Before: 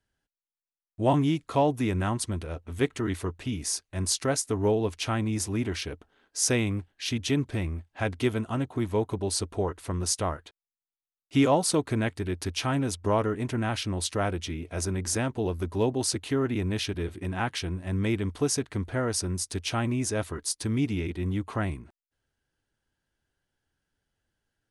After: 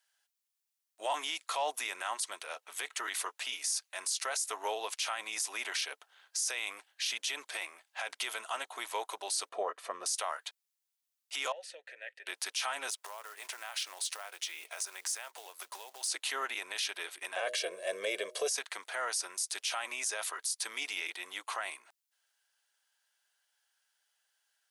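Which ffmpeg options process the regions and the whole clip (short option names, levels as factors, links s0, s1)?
-filter_complex "[0:a]asettb=1/sr,asplit=3[s0][s1][s2];[s0]atrim=end=9.494[s3];[s1]atrim=start=9.49:end=10.06,asetpts=PTS-STARTPTS,afade=t=in:d=0.004:c=qsin,afade=t=out:st=0.566:d=0.004:c=qsin,lowpass=f=1300:p=1,equalizer=f=250:t=o:w=1.4:g=14,aecho=1:1:1.7:0.5,atrim=end_sample=25137[s4];[s2]atrim=start=10.056[s5];[s3][s4]acrossfade=d=0.004:c1=hsin:c2=qsin[s6];[s6][s5]acrossfade=d=0.004:c1=qsin:c2=hsin,asettb=1/sr,asplit=3[s7][s8][s9];[s7]atrim=end=11.524[s10];[s8]atrim=start=11.52:end=12.27,asetpts=PTS-STARTPTS,afade=t=in:d=0.004:c=qsin,afade=t=out:st=0.746:d=0.004:c=qsin,equalizer=f=1900:w=1.6:g=2.5,acompressor=threshold=0.0501:ratio=12:attack=3.2:release=140:knee=1:detection=peak,asplit=3[s11][s12][s13];[s11]bandpass=f=530:t=q:w=8,volume=1[s14];[s12]bandpass=f=1840:t=q:w=8,volume=0.501[s15];[s13]bandpass=f=2480:t=q:w=8,volume=0.355[s16];[s14][s15][s16]amix=inputs=3:normalize=0[s17];[s9]atrim=start=12.266[s18];[s10][s17]acrossfade=d=0.004:c1=hsin:c2=qsin[s19];[s19][s18]acrossfade=d=0.004:c1=qsin:c2=hsin,asettb=1/sr,asplit=3[s20][s21][s22];[s20]atrim=end=12.904[s23];[s21]atrim=start=12.9:end=16.08,asetpts=PTS-STARTPTS,afade=t=in:d=0.004:c=qsin,afade=t=out:st=3.176:d=0.004:c=qsin,highpass=350,acompressor=threshold=0.0126:ratio=16:attack=3.2:release=140:knee=1:detection=peak,acrusher=bits=5:mode=log:mix=0:aa=0.000001[s24];[s22]atrim=start=16.076[s25];[s23][s24]acrossfade=d=0.004:c1=hsin:c2=qsin[s26];[s26][s25]acrossfade=d=0.004:c1=qsin:c2=hsin,asettb=1/sr,asplit=3[s27][s28][s29];[s27]atrim=end=17.364[s30];[s28]atrim=start=17.36:end=18.51,asetpts=PTS-STARTPTS,afade=t=in:d=0.004:c=qsin,afade=t=out:st=1.146:d=0.004:c=qsin,lowshelf=f=720:t=q:w=3:g=9.5,aecho=1:1:1.8:0.65,atrim=end_sample=50715,bandreject=f=123:t=h:w=4,bandreject=f=246:t=h:w=4,bandreject=f=369:t=h:w=4,bandreject=f=492:t=h:w=4,bandreject=f=615:t=h:w=4[s31];[s29]atrim=start=18.506[s32];[s30][s31]acrossfade=d=0.004:c1=hsin:c2=qsin[s33];[s33][s32]acrossfade=d=0.004:c1=qsin:c2=hsin,highpass=f=680:w=0.5412,highpass=f=680:w=1.3066,highshelf=f=2300:g=11,alimiter=limit=0.0631:level=0:latency=1:release=27"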